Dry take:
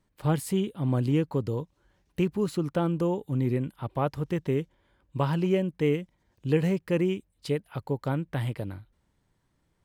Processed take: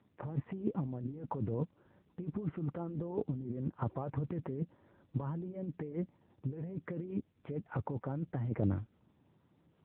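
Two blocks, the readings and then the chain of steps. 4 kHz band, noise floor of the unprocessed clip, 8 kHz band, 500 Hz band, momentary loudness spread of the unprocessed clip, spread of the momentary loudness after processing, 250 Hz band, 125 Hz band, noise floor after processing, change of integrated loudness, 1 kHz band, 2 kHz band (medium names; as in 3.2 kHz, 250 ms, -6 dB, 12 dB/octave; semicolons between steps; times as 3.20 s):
under -25 dB, -73 dBFS, no reading, -13.5 dB, 11 LU, 6 LU, -10.0 dB, -8.5 dB, -72 dBFS, -10.5 dB, -10.5 dB, -15.5 dB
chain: Gaussian low-pass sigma 5.2 samples; compressor with a negative ratio -35 dBFS, ratio -1; AMR-NB 6.7 kbps 8 kHz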